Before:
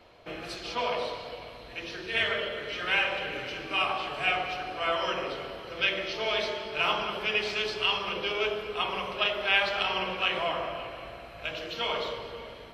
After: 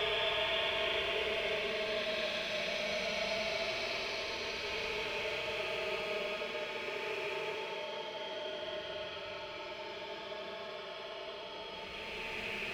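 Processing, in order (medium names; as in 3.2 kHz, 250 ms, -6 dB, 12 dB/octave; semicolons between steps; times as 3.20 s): rattle on loud lows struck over -44 dBFS, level -18 dBFS; Paulstretch 41×, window 0.05 s, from 6.36 s; trim -7 dB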